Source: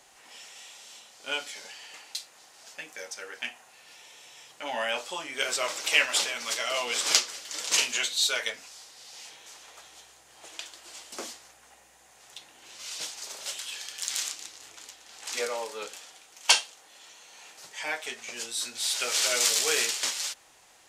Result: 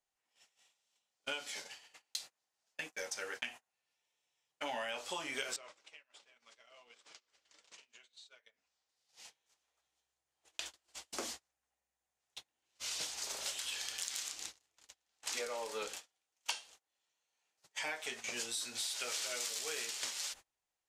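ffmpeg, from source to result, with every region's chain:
-filter_complex "[0:a]asettb=1/sr,asplit=3[a][b][c];[a]atrim=end=5.564[d];[b]atrim=start=5.56:end=8.89,asetpts=PTS-STARTPTS,afade=t=in:d=0.004:c=qsin,afade=t=out:st=3.326:d=0.004:c=qsin,bass=f=250:g=-2,treble=f=4k:g=-7,acompressor=threshold=-42dB:ratio=16:attack=3.2:release=140:knee=1:detection=peak,lowpass=f=9.1k:w=0.5412,lowpass=f=9.1k:w=1.3066[e];[c]atrim=start=8.886[f];[d][e]acrossfade=d=0.004:c1=hsin:c2=qsin[g];[g][f]acrossfade=d=0.004:c1=qsin:c2=hsin,agate=range=-34dB:threshold=-43dB:ratio=16:detection=peak,lowshelf=f=87:g=11.5,acompressor=threshold=-36dB:ratio=16"

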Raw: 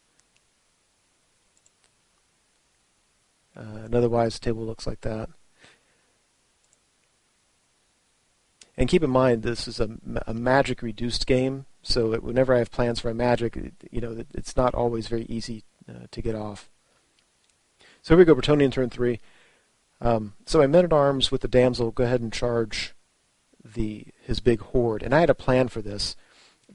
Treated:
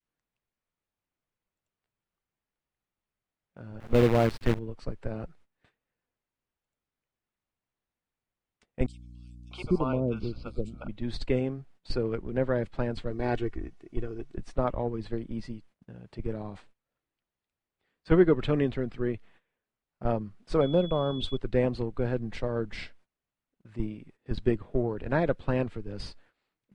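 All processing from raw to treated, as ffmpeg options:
-filter_complex "[0:a]asettb=1/sr,asplit=3[a][b][c];[a]atrim=end=3.804[d];[b]atrim=start=3.8:end=4.59,asetpts=PTS-STARTPTS,afade=t=in:d=0.004:c=qsin,afade=t=out:st=0.786:d=0.004:c=qsin,acontrast=74,acrusher=bits=4:dc=4:mix=0:aa=0.000001[e];[c]atrim=start=4.586[f];[d][e]acrossfade=d=0.004:c1=hsin:c2=qsin[g];[g][f]acrossfade=d=0.004:c1=qsin:c2=hsin,asettb=1/sr,asplit=3[h][i][j];[h]atrim=end=8.864[k];[i]atrim=start=8.86:end=10.89,asetpts=PTS-STARTPTS,afade=t=in:d=0.004:c=qsin,afade=t=out:st=2.026:d=0.004:c=qsin,asuperstop=centerf=1800:order=12:qfactor=2.5,acrossover=split=640|4900[l][m][n];[m]adelay=650[o];[l]adelay=780[p];[p][o][n]amix=inputs=3:normalize=0,atrim=end_sample=89523,aeval=exprs='val(0)+0.00794*(sin(2*PI*60*n/s)+sin(2*PI*2*60*n/s)/2+sin(2*PI*3*60*n/s)/3+sin(2*PI*4*60*n/s)/4+sin(2*PI*5*60*n/s)/5)':c=same[q];[j]atrim=start=10.886[r];[k][q]acrossfade=d=0.004:c1=hsin:c2=qsin[s];[s][r]acrossfade=d=0.004:c1=qsin:c2=hsin,asettb=1/sr,asplit=3[t][u][v];[t]atrim=end=13.104[w];[u]atrim=start=13.1:end=14.36,asetpts=PTS-STARTPTS,afade=t=in:d=0.004:c=qsin,afade=t=out:st=1.256:d=0.004:c=qsin,equalizer=f=6k:t=o:w=0.59:g=6,aecho=1:1:2.7:0.59,atrim=end_sample=55566[x];[v]atrim=start=14.356[y];[w][x]acrossfade=d=0.004:c1=hsin:c2=qsin[z];[z][y]acrossfade=d=0.004:c1=qsin:c2=hsin,asettb=1/sr,asplit=3[aa][ab][ac];[aa]atrim=end=20.614[ad];[ab]atrim=start=20.61:end=21.37,asetpts=PTS-STARTPTS,afade=t=in:d=0.004:c=qsin,afade=t=out:st=0.756:d=0.004:c=qsin,equalizer=f=1.8k:w=2.9:g=-13,aeval=exprs='val(0)+0.0316*sin(2*PI*3400*n/s)':c=same[ae];[ac]atrim=start=21.366[af];[ad][ae]acrossfade=d=0.004:c1=hsin:c2=qsin[ag];[ag][af]acrossfade=d=0.004:c1=qsin:c2=hsin,adynamicequalizer=threshold=0.0224:dfrequency=690:dqfactor=0.93:tfrequency=690:tqfactor=0.93:attack=5:release=100:ratio=0.375:range=2.5:mode=cutabove:tftype=bell,agate=range=-16dB:threshold=-50dB:ratio=16:detection=peak,bass=f=250:g=3,treble=f=4k:g=-15,volume=-6.5dB"

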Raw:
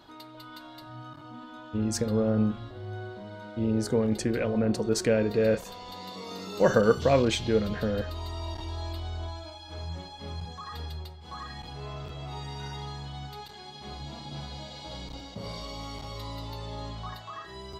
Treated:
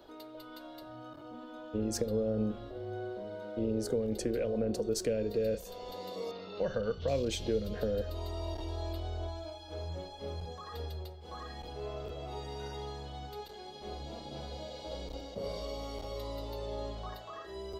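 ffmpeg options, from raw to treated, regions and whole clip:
-filter_complex "[0:a]asettb=1/sr,asplit=3[a][b][c];[a]atrim=end=6.314[d];[b]atrim=start=6.31:end=7.08,asetpts=PTS-STARTPTS,afade=t=in:d=0.004:c=qsin,afade=t=out:st=0.766:d=0.004:c=qsin,lowpass=f=4k:w=0.5412,lowpass=f=4k:w=1.3066,equalizer=f=360:t=o:w=1.6:g=-10[e];[c]atrim=start=7.076[f];[d][e]acrossfade=d=0.004:c1=hsin:c2=qsin[g];[g][f]acrossfade=d=0.004:c1=qsin:c2=hsin,equalizer=f=125:t=o:w=1:g=-12,equalizer=f=250:t=o:w=1:g=-4,equalizer=f=500:t=o:w=1:g=8,equalizer=f=1k:t=o:w=1:g=-8,equalizer=f=2k:t=o:w=1:g=-6,equalizer=f=4k:t=o:w=1:g=-5,equalizer=f=8k:t=o:w=1:g=-6,acrossover=split=200|3000[h][i][j];[i]acompressor=threshold=-33dB:ratio=6[k];[h][k][j]amix=inputs=3:normalize=0,volume=1.5dB"

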